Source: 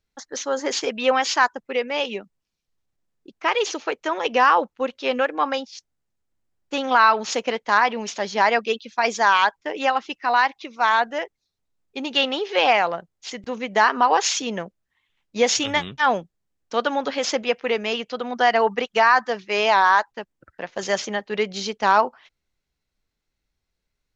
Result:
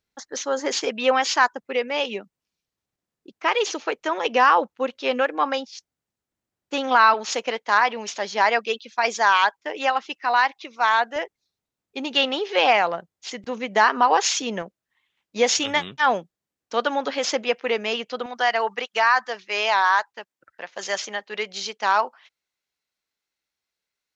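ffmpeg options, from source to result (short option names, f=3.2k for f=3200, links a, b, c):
-af "asetnsamples=n=441:p=0,asendcmd='7.14 highpass f 410;11.16 highpass f 110;14.62 highpass f 220;18.26 highpass f 930',highpass=f=120:p=1"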